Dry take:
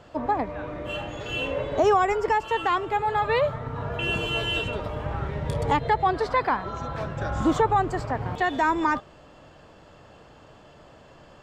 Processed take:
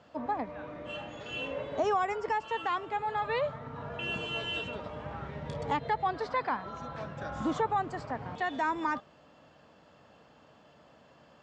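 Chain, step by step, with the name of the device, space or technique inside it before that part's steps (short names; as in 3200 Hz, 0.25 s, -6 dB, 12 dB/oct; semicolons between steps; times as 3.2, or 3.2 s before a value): car door speaker (speaker cabinet 100–7100 Hz, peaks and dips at 110 Hz -6 dB, 230 Hz +3 dB, 370 Hz -5 dB); gain -7.5 dB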